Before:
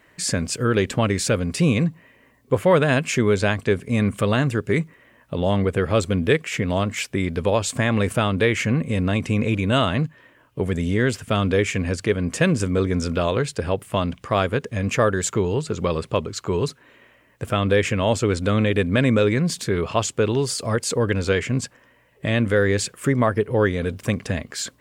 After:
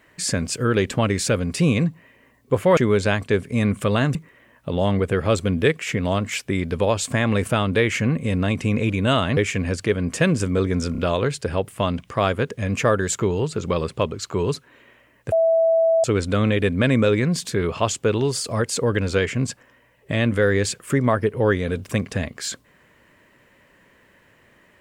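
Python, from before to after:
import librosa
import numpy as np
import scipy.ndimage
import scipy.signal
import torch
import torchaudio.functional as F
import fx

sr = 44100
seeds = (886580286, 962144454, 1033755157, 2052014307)

y = fx.edit(x, sr, fx.cut(start_s=2.77, length_s=0.37),
    fx.cut(start_s=4.52, length_s=0.28),
    fx.cut(start_s=10.02, length_s=1.55),
    fx.stutter(start_s=13.12, slice_s=0.03, count=3),
    fx.bleep(start_s=17.46, length_s=0.72, hz=656.0, db=-14.0), tone=tone)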